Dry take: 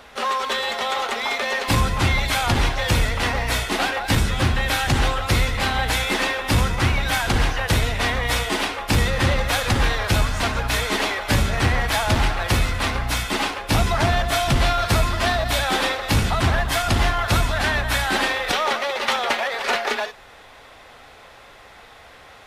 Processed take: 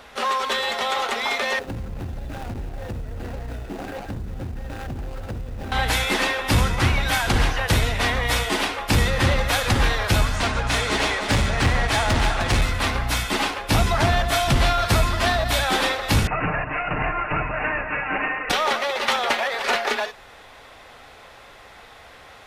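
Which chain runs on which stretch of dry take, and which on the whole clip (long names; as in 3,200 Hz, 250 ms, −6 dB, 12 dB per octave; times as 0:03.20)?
0:01.59–0:05.72: running median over 41 samples + floating-point word with a short mantissa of 4 bits + downward compressor 8 to 1, threshold −27 dBFS
0:10.36–0:12.62: low-pass filter 10,000 Hz 24 dB per octave + hard clipping −15.5 dBFS + single-tap delay 306 ms −7.5 dB
0:16.27–0:18.50: lower of the sound and its delayed copy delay 6.6 ms + Chebyshev low-pass filter 2,800 Hz, order 10 + low-shelf EQ 210 Hz −5.5 dB
whole clip: no processing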